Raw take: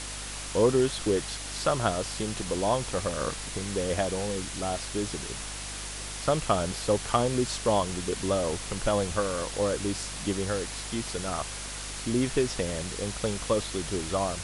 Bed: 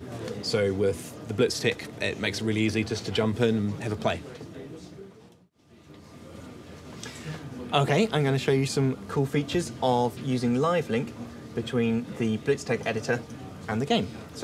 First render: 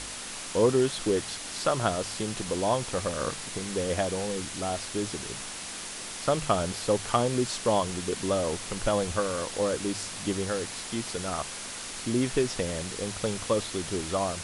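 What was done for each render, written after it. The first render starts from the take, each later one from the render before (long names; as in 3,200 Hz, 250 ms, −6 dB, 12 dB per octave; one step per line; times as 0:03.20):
hum removal 50 Hz, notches 3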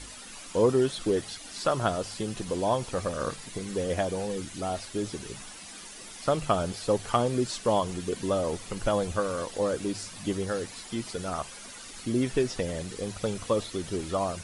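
broadband denoise 11 dB, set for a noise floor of −39 dBFS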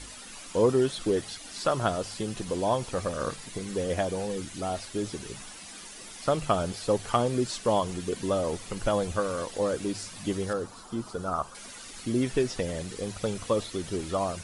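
0:10.53–0:11.55: high shelf with overshoot 1,600 Hz −7 dB, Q 3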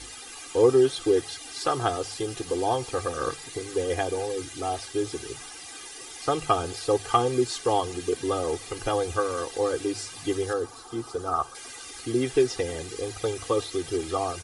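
high-pass filter 98 Hz 6 dB per octave
comb filter 2.5 ms, depth 97%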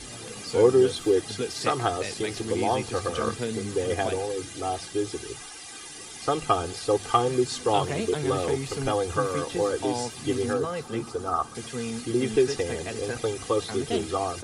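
mix in bed −7.5 dB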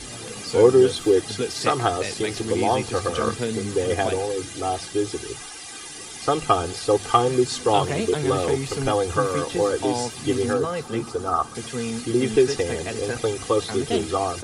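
level +4 dB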